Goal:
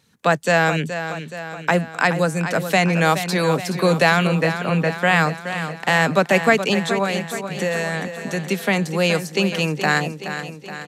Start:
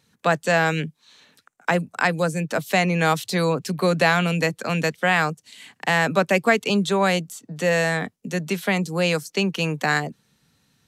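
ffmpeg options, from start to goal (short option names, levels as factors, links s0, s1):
-filter_complex "[0:a]asettb=1/sr,asplit=3[s0][s1][s2];[s0]atrim=end=4.274[s3];[s1]atrim=start=4.27:end=4.94,asetpts=PTS-STARTPTS,afade=t=in:d=0.004:c=qsin,afade=t=out:st=0.666:d=0.004:c=qsin,lowpass=2300[s4];[s2]atrim=start=4.936[s5];[s3][s4]acrossfade=d=0.004:c1=hsin:c2=qsin[s6];[s6][s5]acrossfade=d=0.004:c1=qsin:c2=hsin,asettb=1/sr,asplit=3[s7][s8][s9];[s7]atrim=end=6.744[s10];[s8]atrim=start=6.74:end=8.47,asetpts=PTS-STARTPTS,afade=t=in:d=0.004:c=qsin,afade=t=out:st=1.726:d=0.004:c=qsin,acompressor=threshold=0.0708:ratio=3[s11];[s9]atrim=start=8.466[s12];[s10][s11]acrossfade=d=0.004:c1=hsin:c2=qsin[s13];[s13][s12]acrossfade=d=0.004:c1=qsin:c2=hsin,aecho=1:1:423|846|1269|1692|2115|2538|2961:0.316|0.18|0.103|0.0586|0.0334|0.019|0.0108,volume=1.33"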